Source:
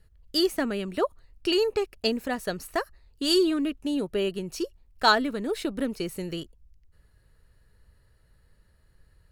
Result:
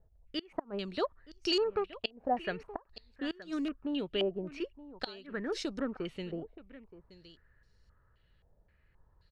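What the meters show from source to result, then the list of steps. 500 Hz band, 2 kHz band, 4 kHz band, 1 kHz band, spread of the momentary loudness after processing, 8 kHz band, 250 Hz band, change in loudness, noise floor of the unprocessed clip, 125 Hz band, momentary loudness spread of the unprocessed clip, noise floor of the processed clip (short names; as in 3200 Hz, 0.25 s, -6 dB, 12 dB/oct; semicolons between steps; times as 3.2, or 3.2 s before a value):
-8.0 dB, -11.5 dB, -9.0 dB, -9.0 dB, 14 LU, -14.5 dB, -9.0 dB, -9.0 dB, -63 dBFS, -7.0 dB, 12 LU, -69 dBFS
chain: flipped gate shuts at -14 dBFS, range -29 dB; echo 0.923 s -17 dB; stepped low-pass 3.8 Hz 720–5700 Hz; gain -7 dB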